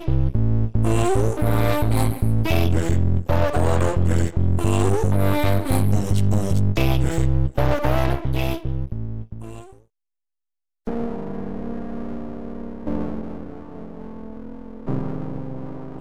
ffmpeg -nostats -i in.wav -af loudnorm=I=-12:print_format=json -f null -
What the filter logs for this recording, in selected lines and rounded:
"input_i" : "-23.0",
"input_tp" : "-7.8",
"input_lra" : "11.6",
"input_thresh" : "-34.0",